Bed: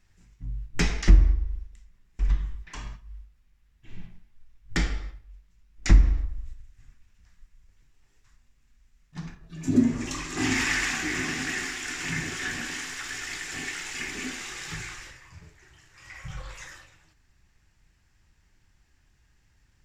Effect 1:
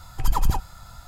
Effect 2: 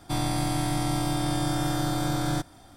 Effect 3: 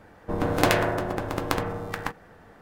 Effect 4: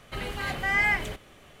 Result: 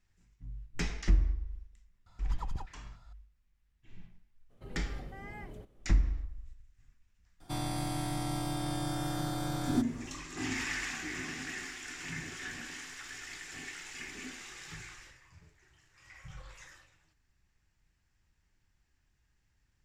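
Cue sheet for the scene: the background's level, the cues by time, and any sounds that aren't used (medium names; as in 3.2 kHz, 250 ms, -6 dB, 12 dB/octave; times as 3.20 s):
bed -10 dB
2.06 s: add 1 -16.5 dB + distance through air 94 m
4.49 s: add 4 -10.5 dB, fades 0.02 s + FFT filter 400 Hz 0 dB, 2.2 kHz -18 dB, 13 kHz -12 dB
7.40 s: add 2 -8 dB
not used: 3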